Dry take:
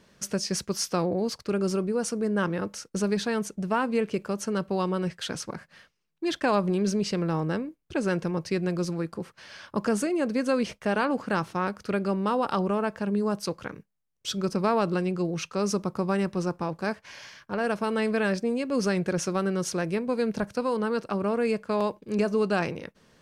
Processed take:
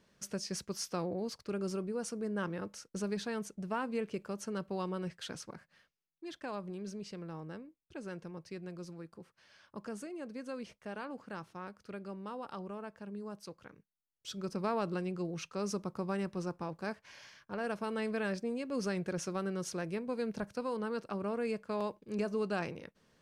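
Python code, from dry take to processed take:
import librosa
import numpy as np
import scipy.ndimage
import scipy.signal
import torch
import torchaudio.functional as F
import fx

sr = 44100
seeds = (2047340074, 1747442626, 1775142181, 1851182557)

y = fx.gain(x, sr, db=fx.line((5.27, -10.0), (6.28, -17.0), (13.69, -17.0), (14.66, -9.5)))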